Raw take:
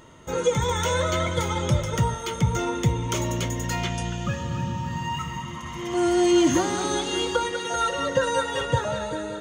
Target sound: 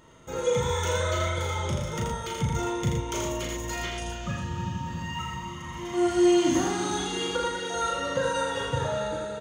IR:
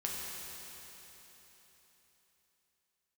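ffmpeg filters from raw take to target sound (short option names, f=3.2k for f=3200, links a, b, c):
-filter_complex "[0:a]asettb=1/sr,asplit=3[a][b][c];[a]atrim=end=1.314[d];[b]atrim=start=1.31:end=2.05,asetpts=PTS-STARTPTS,afade=t=in:d=0.004:c=qsin,afade=t=out:st=0.736:d=0.004:c=qsin,acompressor=threshold=-21dB:ratio=6[e];[c]atrim=start=2.046[f];[d][e]acrossfade=d=0.004:c1=hsin:c2=qsin[g];[g][f]acrossfade=d=0.004:c1=qsin:c2=hsin,asplit=2[h][i];[i]adelay=37,volume=-3dB[j];[h][j]amix=inputs=2:normalize=0,aecho=1:1:82|400:0.668|0.188,volume=-6.5dB"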